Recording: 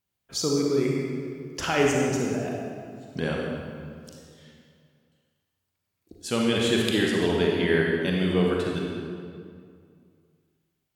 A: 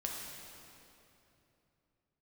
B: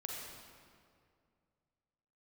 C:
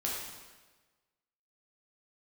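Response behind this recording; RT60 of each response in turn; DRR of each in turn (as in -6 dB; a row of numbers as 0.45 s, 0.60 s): B; 3.0 s, 2.3 s, 1.3 s; -2.0 dB, -2.0 dB, -4.5 dB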